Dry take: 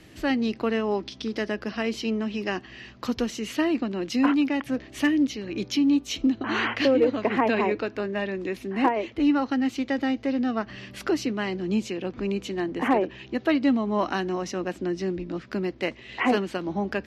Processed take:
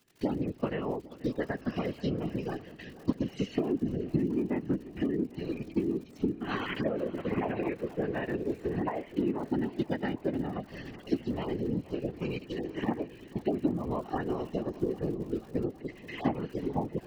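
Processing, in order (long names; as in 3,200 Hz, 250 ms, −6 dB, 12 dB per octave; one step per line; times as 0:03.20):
harmonic-percussive split with one part muted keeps harmonic
noise gate with hold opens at −37 dBFS
0:03.55–0:05.20: bass and treble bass +9 dB, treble −14 dB
treble cut that deepens with the level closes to 2,300 Hz, closed at −19 dBFS
0:12.17–0:12.84: tilt shelving filter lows −7 dB, about 1,300 Hz
downward compressor 5 to 1, threshold −30 dBFS, peak gain reduction 14 dB
transient designer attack +4 dB, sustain −4 dB
surface crackle 57 per second −43 dBFS
random phases in short frames
feedback echo with a long and a short gap by turns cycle 805 ms, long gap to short 1.5 to 1, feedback 50%, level −18 dB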